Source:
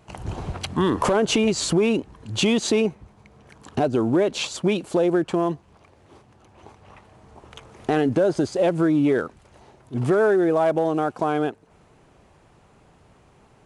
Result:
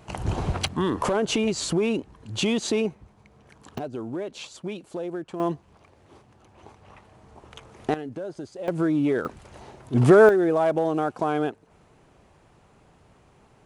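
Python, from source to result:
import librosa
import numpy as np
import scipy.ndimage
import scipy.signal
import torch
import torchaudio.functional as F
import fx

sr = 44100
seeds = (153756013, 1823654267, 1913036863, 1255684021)

y = fx.gain(x, sr, db=fx.steps((0.0, 4.0), (0.68, -4.0), (3.78, -12.0), (5.4, -2.0), (7.94, -14.5), (8.68, -3.5), (9.25, 5.5), (10.29, -2.0)))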